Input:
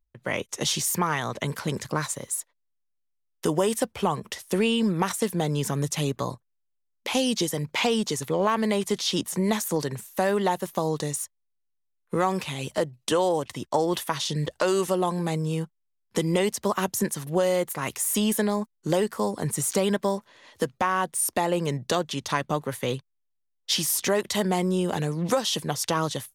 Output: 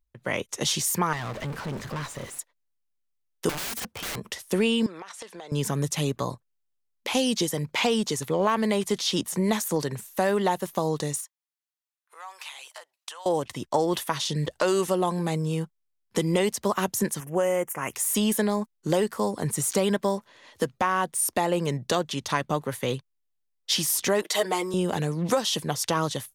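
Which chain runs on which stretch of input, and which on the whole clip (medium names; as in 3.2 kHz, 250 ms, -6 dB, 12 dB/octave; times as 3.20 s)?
1.13–2.39 s: jump at every zero crossing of -28.5 dBFS + low-pass 2.3 kHz 6 dB/octave + valve stage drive 28 dB, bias 0.75
3.49–4.17 s: high-pass 71 Hz 24 dB/octave + integer overflow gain 27.5 dB
4.86–5.52 s: band-pass 580–5700 Hz + compression 20:1, threshold -36 dBFS
11.20–13.26 s: compression 4:1, threshold -34 dBFS + high-pass 800 Hz 24 dB/octave
17.20–17.94 s: Butterworth band-stop 4.1 kHz, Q 1.3 + bass shelf 240 Hz -6.5 dB
24.22–24.74 s: high-pass 310 Hz 24 dB/octave + comb 6.4 ms, depth 79%
whole clip: none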